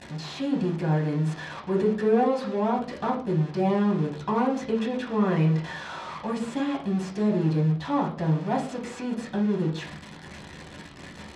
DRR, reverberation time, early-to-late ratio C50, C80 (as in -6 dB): -2.0 dB, 0.45 s, 9.0 dB, 14.0 dB